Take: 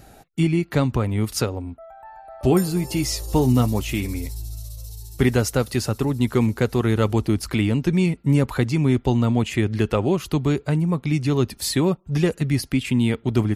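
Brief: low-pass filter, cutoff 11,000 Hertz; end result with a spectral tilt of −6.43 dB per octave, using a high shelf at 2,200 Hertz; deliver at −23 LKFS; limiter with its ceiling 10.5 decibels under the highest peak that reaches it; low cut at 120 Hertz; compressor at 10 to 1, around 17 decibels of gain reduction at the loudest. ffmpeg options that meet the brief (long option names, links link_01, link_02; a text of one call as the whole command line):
ffmpeg -i in.wav -af "highpass=120,lowpass=11000,highshelf=frequency=2200:gain=-6.5,acompressor=threshold=-32dB:ratio=10,volume=16dB,alimiter=limit=-12.5dB:level=0:latency=1" out.wav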